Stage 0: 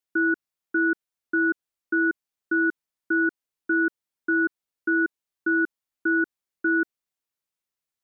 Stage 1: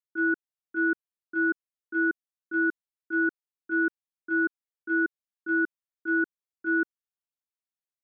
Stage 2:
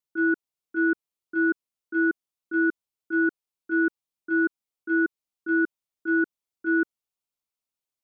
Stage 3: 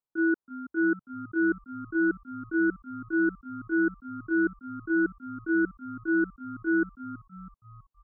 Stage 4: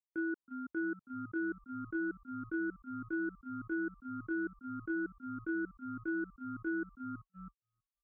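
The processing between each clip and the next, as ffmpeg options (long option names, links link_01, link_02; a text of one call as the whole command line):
ffmpeg -i in.wav -af "agate=range=-13dB:threshold=-21dB:ratio=16:detection=peak" out.wav
ffmpeg -i in.wav -af "equalizer=frequency=1700:width_type=o:width=0.33:gain=-9.5,volume=4dB" out.wav
ffmpeg -i in.wav -filter_complex "[0:a]highshelf=frequency=1600:width_type=q:width=1.5:gain=-10,asplit=6[link_01][link_02][link_03][link_04][link_05][link_06];[link_02]adelay=325,afreqshift=-72,volume=-14.5dB[link_07];[link_03]adelay=650,afreqshift=-144,volume=-19.9dB[link_08];[link_04]adelay=975,afreqshift=-216,volume=-25.2dB[link_09];[link_05]adelay=1300,afreqshift=-288,volume=-30.6dB[link_10];[link_06]adelay=1625,afreqshift=-360,volume=-35.9dB[link_11];[link_01][link_07][link_08][link_09][link_10][link_11]amix=inputs=6:normalize=0,volume=-1.5dB" out.wav
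ffmpeg -i in.wav -af "agate=range=-37dB:threshold=-43dB:ratio=16:detection=peak,acompressor=threshold=-31dB:ratio=4,volume=-3.5dB" out.wav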